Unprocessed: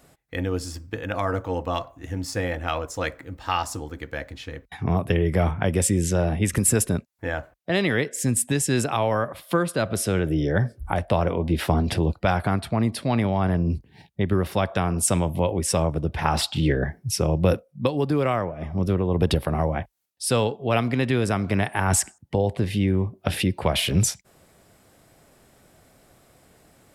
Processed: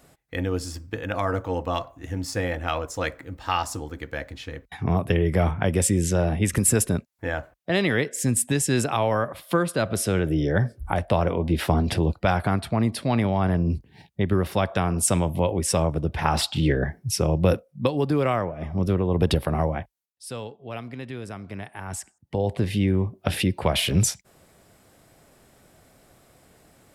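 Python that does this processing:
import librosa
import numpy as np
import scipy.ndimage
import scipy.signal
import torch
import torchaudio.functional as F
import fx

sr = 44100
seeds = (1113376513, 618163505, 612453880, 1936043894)

y = fx.edit(x, sr, fx.fade_down_up(start_s=19.64, length_s=2.9, db=-13.0, fade_s=0.42), tone=tone)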